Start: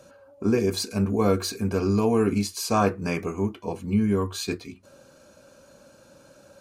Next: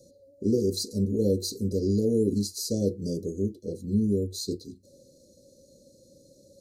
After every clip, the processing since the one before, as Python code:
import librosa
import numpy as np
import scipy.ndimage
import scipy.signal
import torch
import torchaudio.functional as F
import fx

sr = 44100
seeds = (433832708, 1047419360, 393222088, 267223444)

y = scipy.signal.sosfilt(scipy.signal.cheby1(5, 1.0, [550.0, 4000.0], 'bandstop', fs=sr, output='sos'), x)
y = y * librosa.db_to_amplitude(-1.5)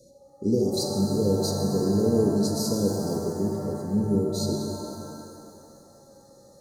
y = fx.rev_shimmer(x, sr, seeds[0], rt60_s=2.6, semitones=7, shimmer_db=-8, drr_db=1.5)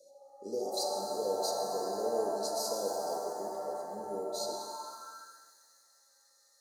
y = fx.filter_sweep_highpass(x, sr, from_hz=700.0, to_hz=2000.0, start_s=4.44, end_s=5.61, q=3.0)
y = y * librosa.db_to_amplitude(-5.5)